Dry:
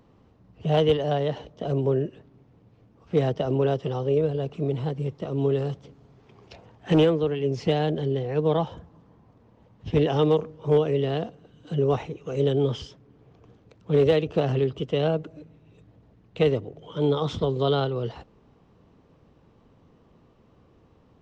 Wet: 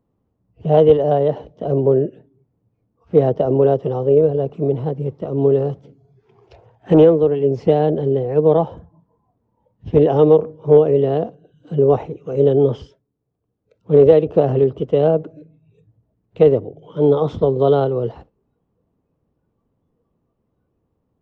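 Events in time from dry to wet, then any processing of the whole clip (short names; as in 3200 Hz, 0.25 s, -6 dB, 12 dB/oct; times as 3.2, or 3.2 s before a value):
12.72–13.94 dip -10 dB, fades 0.38 s equal-power
whole clip: tilt shelf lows +6.5 dB, about 1500 Hz; spectral noise reduction 15 dB; dynamic EQ 550 Hz, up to +8 dB, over -30 dBFS, Q 0.73; gain -2.5 dB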